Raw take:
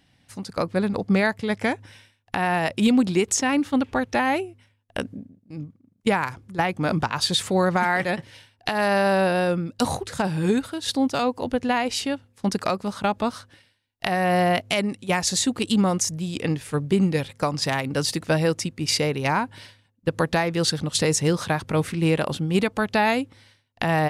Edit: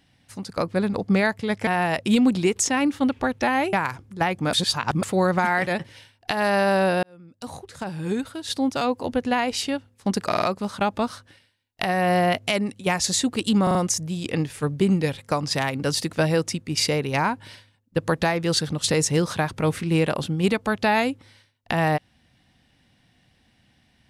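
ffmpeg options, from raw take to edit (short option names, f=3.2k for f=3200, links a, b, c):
-filter_complex "[0:a]asplit=12[a][b][c][d][e][f][g][h][i][j][k][l];[a]atrim=end=1.672[m];[b]atrim=start=2.388:end=4.452[n];[c]atrim=start=6.108:end=6.912[o];[d]atrim=start=6.908:end=7.412,asetpts=PTS-STARTPTS,areverse[p];[e]atrim=start=7.408:end=9.41,asetpts=PTS-STARTPTS,afade=t=out:st=1.998:d=0.004:c=hsin[q];[f]atrim=start=9.41:end=12.702,asetpts=PTS-STARTPTS,afade=t=in:d=1.9[r];[g]atrim=start=12.648:end=12.702[s];[h]atrim=start=12.648:end=12.702[t];[i]atrim=start=12.648:end=15.902[u];[j]atrim=start=15.858:end=15.902[v];[k]atrim=start=15.858:end=15.902[w];[l]atrim=start=15.858[x];[m][n]acrossfade=d=0.004:c1=hsin:c2=hsin[y];[y][o]acrossfade=d=0.004:c1=hsin:c2=hsin[z];[z][p]acrossfade=d=0.004:c1=hsin:c2=hsin[aa];[q][r]concat=n=2:v=0:a=1[ab];[aa][ab]acrossfade=d=0.004:c1=hsin:c2=hsin[ac];[ac][s]acrossfade=d=0.004:c1=hsin:c2=hsin[ad];[ad][t]acrossfade=d=0.004:c1=hsin:c2=hsin[ae];[ae][u]acrossfade=d=0.004:c1=hsin:c2=hsin[af];[af][v]acrossfade=d=0.004:c1=hsin:c2=hsin[ag];[ag][w]acrossfade=d=0.004:c1=hsin:c2=hsin[ah];[ah][x]acrossfade=d=0.004:c1=hsin:c2=hsin"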